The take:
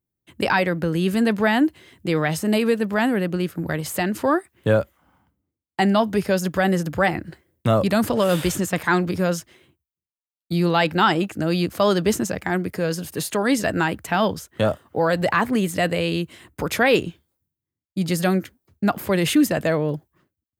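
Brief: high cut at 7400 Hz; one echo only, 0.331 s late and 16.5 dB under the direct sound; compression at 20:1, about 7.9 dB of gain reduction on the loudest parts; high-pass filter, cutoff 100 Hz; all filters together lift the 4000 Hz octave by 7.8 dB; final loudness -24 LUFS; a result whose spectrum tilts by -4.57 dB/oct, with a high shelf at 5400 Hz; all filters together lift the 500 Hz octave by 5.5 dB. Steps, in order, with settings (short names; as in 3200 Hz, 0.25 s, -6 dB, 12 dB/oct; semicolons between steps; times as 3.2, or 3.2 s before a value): HPF 100 Hz; LPF 7400 Hz; bell 500 Hz +6.5 dB; bell 4000 Hz +7.5 dB; high shelf 5400 Hz +7.5 dB; compressor 20:1, threshold -15 dBFS; echo 0.331 s -16.5 dB; gain -2 dB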